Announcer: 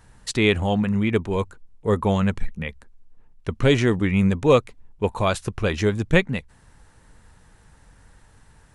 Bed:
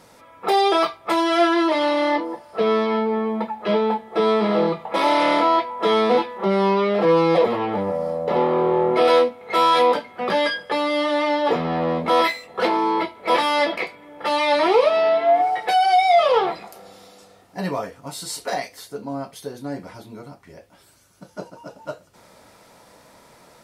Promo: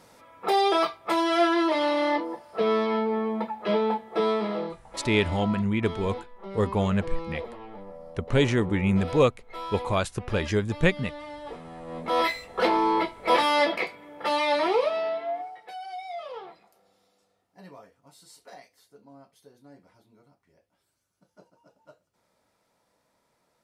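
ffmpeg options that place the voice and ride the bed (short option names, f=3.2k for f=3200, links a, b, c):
-filter_complex "[0:a]adelay=4700,volume=-4dB[a];[1:a]volume=12.5dB,afade=t=out:st=4.14:d=0.67:silence=0.177828,afade=t=in:st=11.86:d=0.57:silence=0.141254,afade=t=out:st=14.02:d=1.53:silence=0.112202[b];[a][b]amix=inputs=2:normalize=0"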